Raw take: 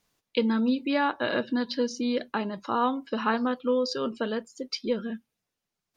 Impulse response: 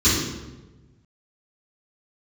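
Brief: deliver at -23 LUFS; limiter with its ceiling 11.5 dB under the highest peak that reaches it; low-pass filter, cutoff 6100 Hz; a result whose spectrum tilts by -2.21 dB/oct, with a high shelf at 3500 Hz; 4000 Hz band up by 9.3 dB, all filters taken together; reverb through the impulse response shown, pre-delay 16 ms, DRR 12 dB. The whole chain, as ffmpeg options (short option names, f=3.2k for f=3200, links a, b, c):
-filter_complex "[0:a]lowpass=6.1k,highshelf=f=3.5k:g=8,equalizer=f=4k:t=o:g=7,alimiter=limit=-15.5dB:level=0:latency=1,asplit=2[a][b];[1:a]atrim=start_sample=2205,adelay=16[c];[b][c]afir=irnorm=-1:irlink=0,volume=-30.5dB[d];[a][d]amix=inputs=2:normalize=0,volume=3.5dB"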